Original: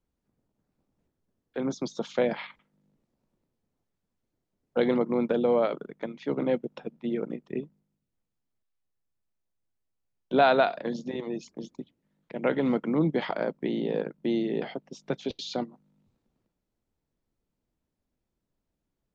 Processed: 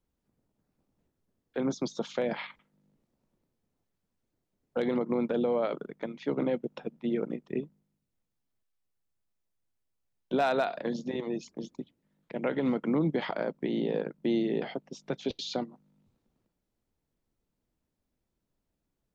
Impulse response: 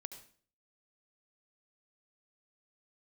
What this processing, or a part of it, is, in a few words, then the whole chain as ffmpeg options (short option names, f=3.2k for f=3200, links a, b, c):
clipper into limiter: -af "asoftclip=type=hard:threshold=-13dB,alimiter=limit=-19.5dB:level=0:latency=1:release=112"